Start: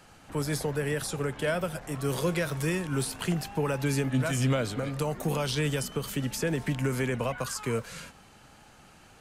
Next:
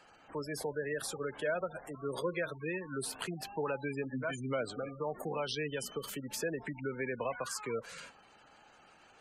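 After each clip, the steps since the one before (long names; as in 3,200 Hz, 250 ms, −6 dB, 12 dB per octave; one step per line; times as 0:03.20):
gate on every frequency bin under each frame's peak −20 dB strong
bass and treble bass −14 dB, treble −1 dB
level −3.5 dB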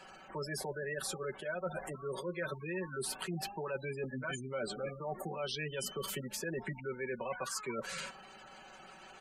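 comb filter 5.3 ms, depth 80%
reversed playback
downward compressor 6 to 1, threshold −41 dBFS, peak gain reduction 13.5 dB
reversed playback
level +5 dB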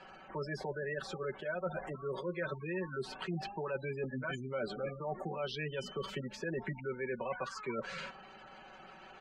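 high-frequency loss of the air 180 metres
level +1.5 dB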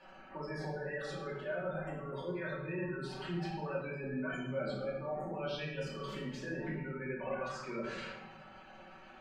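rectangular room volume 370 cubic metres, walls mixed, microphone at 2.5 metres
level −8 dB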